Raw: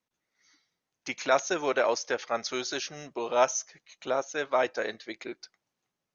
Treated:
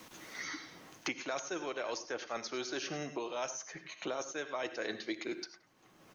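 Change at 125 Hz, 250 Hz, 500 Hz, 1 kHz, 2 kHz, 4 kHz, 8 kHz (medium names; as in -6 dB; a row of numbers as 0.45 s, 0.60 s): -2.0 dB, -3.0 dB, -11.0 dB, -12.0 dB, -7.0 dB, -5.5 dB, no reading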